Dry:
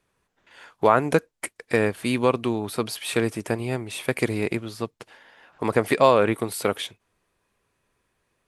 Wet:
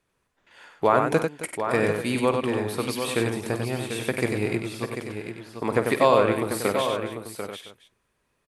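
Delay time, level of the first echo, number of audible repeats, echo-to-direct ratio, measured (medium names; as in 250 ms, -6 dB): 50 ms, -13.0 dB, 7, -2.0 dB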